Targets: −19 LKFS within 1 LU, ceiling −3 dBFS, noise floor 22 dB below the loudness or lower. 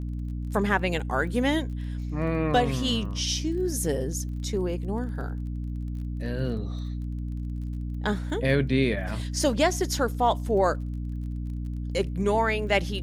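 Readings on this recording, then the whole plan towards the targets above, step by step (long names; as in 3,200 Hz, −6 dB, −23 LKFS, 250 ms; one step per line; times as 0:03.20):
crackle rate 28 per second; mains hum 60 Hz; hum harmonics up to 300 Hz; level of the hum −29 dBFS; integrated loudness −27.5 LKFS; sample peak −9.0 dBFS; target loudness −19.0 LKFS
→ click removal
mains-hum notches 60/120/180/240/300 Hz
level +8.5 dB
brickwall limiter −3 dBFS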